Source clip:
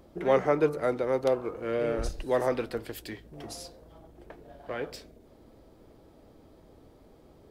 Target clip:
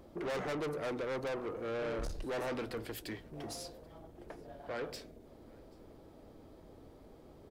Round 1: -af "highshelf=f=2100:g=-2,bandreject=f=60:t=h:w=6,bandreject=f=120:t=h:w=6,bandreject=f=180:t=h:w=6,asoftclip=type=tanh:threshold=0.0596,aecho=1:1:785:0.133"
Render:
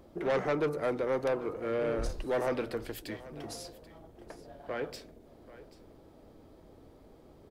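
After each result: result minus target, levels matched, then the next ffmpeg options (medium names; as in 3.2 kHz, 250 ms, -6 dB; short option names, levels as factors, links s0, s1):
echo-to-direct +9.5 dB; saturation: distortion -6 dB
-af "highshelf=f=2100:g=-2,bandreject=f=60:t=h:w=6,bandreject=f=120:t=h:w=6,bandreject=f=180:t=h:w=6,asoftclip=type=tanh:threshold=0.0596,aecho=1:1:785:0.0447"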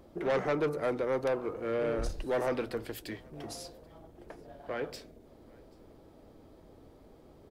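saturation: distortion -6 dB
-af "highshelf=f=2100:g=-2,bandreject=f=60:t=h:w=6,bandreject=f=120:t=h:w=6,bandreject=f=180:t=h:w=6,asoftclip=type=tanh:threshold=0.0188,aecho=1:1:785:0.0447"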